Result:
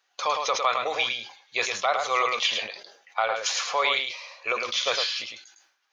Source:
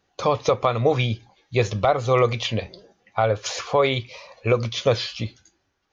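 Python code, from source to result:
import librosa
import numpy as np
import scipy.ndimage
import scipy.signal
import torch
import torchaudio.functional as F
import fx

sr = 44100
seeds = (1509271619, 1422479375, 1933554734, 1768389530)

y = scipy.signal.sosfilt(scipy.signal.butter(2, 1100.0, 'highpass', fs=sr, output='sos'), x)
y = y + 10.0 ** (-5.0 / 20.0) * np.pad(y, (int(106 * sr / 1000.0), 0))[:len(y)]
y = fx.sustainer(y, sr, db_per_s=99.0)
y = F.gain(torch.from_numpy(y), 2.0).numpy()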